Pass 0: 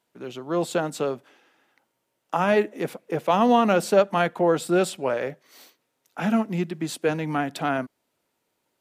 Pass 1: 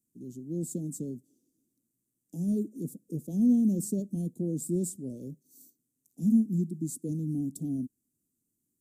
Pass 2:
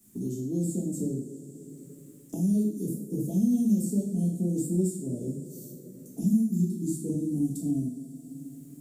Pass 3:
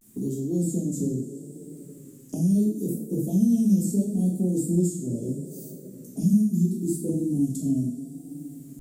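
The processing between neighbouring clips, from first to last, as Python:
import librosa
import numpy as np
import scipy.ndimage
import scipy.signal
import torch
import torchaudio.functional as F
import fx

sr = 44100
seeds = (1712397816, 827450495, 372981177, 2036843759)

y1 = scipy.signal.sosfilt(scipy.signal.ellip(3, 1.0, 80, [270.0, 7400.0], 'bandstop', fs=sr, output='sos'), x)
y1 = fx.dynamic_eq(y1, sr, hz=3000.0, q=0.79, threshold_db=-56.0, ratio=4.0, max_db=-3)
y2 = fx.rev_double_slope(y1, sr, seeds[0], early_s=0.51, late_s=2.2, knee_db=-18, drr_db=-6.5)
y2 = fx.band_squash(y2, sr, depth_pct=70)
y2 = F.gain(torch.from_numpy(y2), -4.0).numpy()
y3 = fx.vibrato(y2, sr, rate_hz=0.75, depth_cents=93.0)
y3 = F.gain(torch.from_numpy(y3), 3.5).numpy()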